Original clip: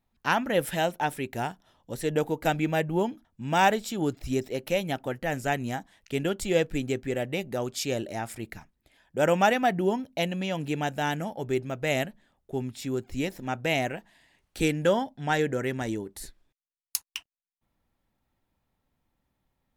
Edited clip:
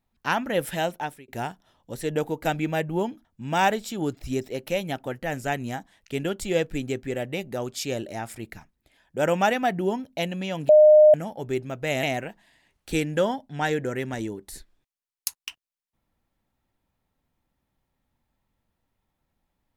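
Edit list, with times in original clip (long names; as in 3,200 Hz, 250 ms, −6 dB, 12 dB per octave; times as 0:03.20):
0:00.93–0:01.28: fade out
0:10.69–0:11.14: beep over 610 Hz −9.5 dBFS
0:12.03–0:13.71: remove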